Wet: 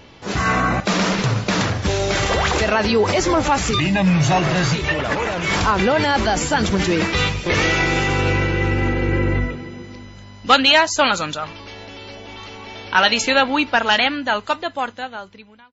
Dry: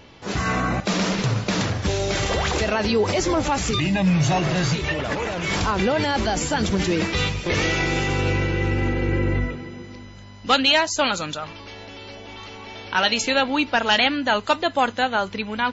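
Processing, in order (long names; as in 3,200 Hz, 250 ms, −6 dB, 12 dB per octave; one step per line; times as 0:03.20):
fade-out on the ending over 2.41 s
dynamic equaliser 1,300 Hz, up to +4 dB, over −31 dBFS, Q 0.73
level +2.5 dB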